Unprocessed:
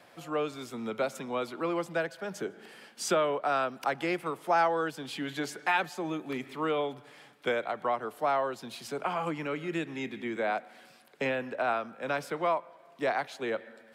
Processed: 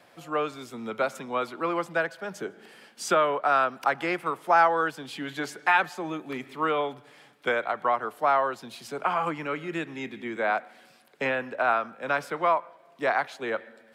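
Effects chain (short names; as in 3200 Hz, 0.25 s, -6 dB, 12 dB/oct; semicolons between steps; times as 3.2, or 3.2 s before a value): dynamic EQ 1300 Hz, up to +8 dB, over -42 dBFS, Q 0.77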